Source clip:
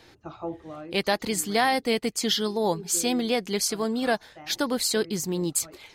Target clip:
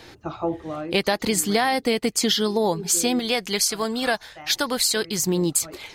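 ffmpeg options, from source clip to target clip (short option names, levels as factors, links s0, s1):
-filter_complex "[0:a]asettb=1/sr,asplit=3[s0][s1][s2];[s0]atrim=end=3.194[s3];[s1]atrim=start=3.19:end=5.27,asetpts=PTS-STARTPTS,afade=t=in:d=0.004:c=qsin,afade=t=out:st=2.076:d=0.004:c=qsin,equalizer=f=270:w=0.46:g=-9[s4];[s2]atrim=start=5.266[s5];[s3][s4]acrossfade=d=0.004:c1=hsin:c2=qsin[s6];[s6][s5]acrossfade=d=0.004:c1=qsin:c2=hsin,acompressor=threshold=0.0501:ratio=6,volume=2.66"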